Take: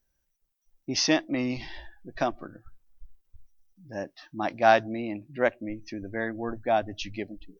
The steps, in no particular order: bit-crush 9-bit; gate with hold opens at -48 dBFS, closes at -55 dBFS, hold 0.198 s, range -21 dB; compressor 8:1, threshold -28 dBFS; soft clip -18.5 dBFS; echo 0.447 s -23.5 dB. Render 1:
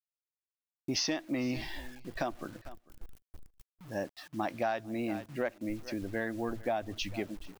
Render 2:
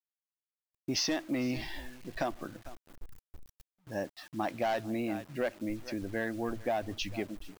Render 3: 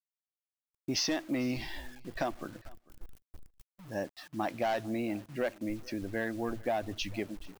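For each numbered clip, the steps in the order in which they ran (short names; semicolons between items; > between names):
gate with hold > bit-crush > echo > compressor > soft clip; echo > soft clip > compressor > bit-crush > gate with hold; soft clip > compressor > bit-crush > echo > gate with hold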